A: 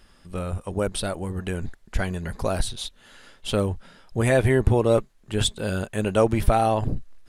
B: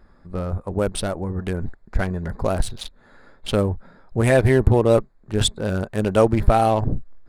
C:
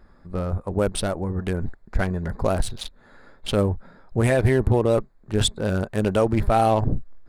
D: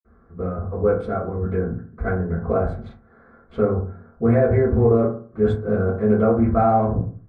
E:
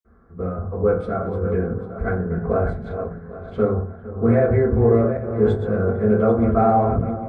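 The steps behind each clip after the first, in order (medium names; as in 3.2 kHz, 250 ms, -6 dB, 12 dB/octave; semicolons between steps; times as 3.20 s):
local Wiener filter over 15 samples; trim +3.5 dB
peak limiter -9.5 dBFS, peak gain reduction 7.5 dB
reverberation RT60 0.45 s, pre-delay 46 ms; trim +7 dB
backward echo that repeats 398 ms, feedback 42%, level -9 dB; feedback echo behind a low-pass 457 ms, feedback 57%, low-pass 1.9 kHz, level -16.5 dB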